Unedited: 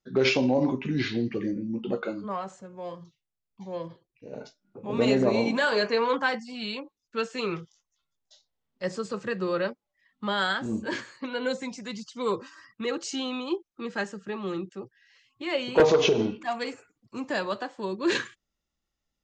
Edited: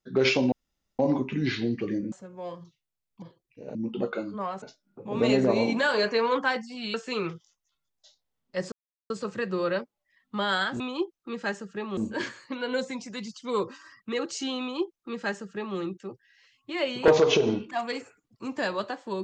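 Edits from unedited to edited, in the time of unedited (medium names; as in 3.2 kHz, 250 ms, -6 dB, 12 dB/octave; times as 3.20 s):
0.52 s: insert room tone 0.47 s
1.65–2.52 s: move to 4.40 s
3.62–3.87 s: delete
6.72–7.21 s: delete
8.99 s: insert silence 0.38 s
13.32–14.49 s: copy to 10.69 s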